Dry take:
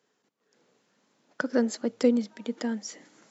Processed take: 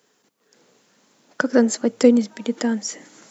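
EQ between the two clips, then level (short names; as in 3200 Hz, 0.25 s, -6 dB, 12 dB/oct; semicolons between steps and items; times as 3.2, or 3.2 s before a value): high shelf 6000 Hz +9 dB; dynamic EQ 4200 Hz, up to -5 dB, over -51 dBFS, Q 1.4; +8.5 dB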